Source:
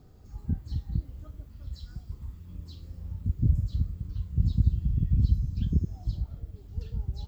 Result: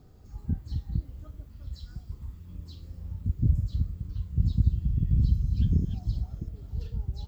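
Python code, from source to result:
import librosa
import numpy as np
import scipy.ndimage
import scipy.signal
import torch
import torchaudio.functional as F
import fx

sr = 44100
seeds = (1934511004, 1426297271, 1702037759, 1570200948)

y = fx.reverse_delay(x, sr, ms=353, wet_db=-5, at=(4.72, 6.88))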